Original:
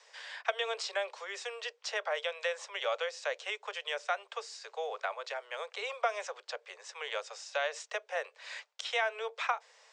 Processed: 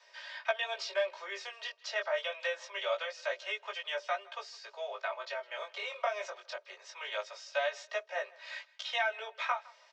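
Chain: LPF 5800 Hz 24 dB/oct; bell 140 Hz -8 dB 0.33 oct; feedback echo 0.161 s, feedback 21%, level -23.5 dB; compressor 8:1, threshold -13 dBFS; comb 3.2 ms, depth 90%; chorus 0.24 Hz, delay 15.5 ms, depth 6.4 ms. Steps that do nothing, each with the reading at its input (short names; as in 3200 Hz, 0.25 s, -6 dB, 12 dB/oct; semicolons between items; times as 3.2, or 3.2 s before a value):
bell 140 Hz: input band starts at 360 Hz; compressor, threshold -13 dBFS: input peak -15.5 dBFS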